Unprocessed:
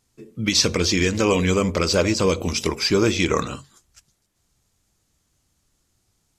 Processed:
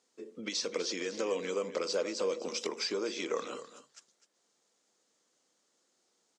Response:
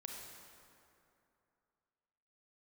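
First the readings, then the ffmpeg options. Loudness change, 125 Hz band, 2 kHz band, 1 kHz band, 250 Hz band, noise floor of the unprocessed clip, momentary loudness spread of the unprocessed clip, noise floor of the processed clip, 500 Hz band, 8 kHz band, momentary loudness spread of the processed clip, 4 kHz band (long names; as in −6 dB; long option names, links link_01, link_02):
−14.5 dB, −31.5 dB, −16.0 dB, −14.5 dB, −19.0 dB, −70 dBFS, 6 LU, −76 dBFS, −11.5 dB, −15.0 dB, 10 LU, −14.0 dB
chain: -af "acompressor=threshold=-29dB:ratio=6,highpass=frequency=260:width=0.5412,highpass=frequency=260:width=1.3066,equalizer=frequency=300:width_type=q:width=4:gain=-3,equalizer=frequency=500:width_type=q:width=4:gain=7,equalizer=frequency=2500:width_type=q:width=4:gain=-3,lowpass=frequency=8000:width=0.5412,lowpass=frequency=8000:width=1.3066,aecho=1:1:252:0.211,volume=-3dB"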